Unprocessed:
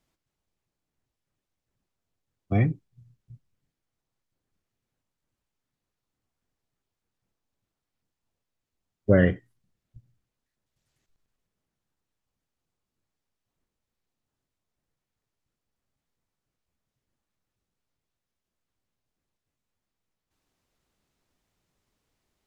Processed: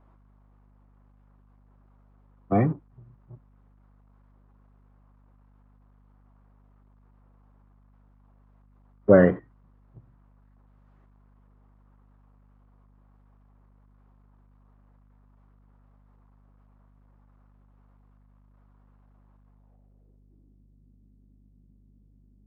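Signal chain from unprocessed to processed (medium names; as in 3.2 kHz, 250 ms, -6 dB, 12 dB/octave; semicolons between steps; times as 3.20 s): companding laws mixed up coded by mu; high-pass 170 Hz; low-pass sweep 1.1 kHz -> 220 Hz, 19.43–20.63 s; hum 50 Hz, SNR 25 dB; trim +3.5 dB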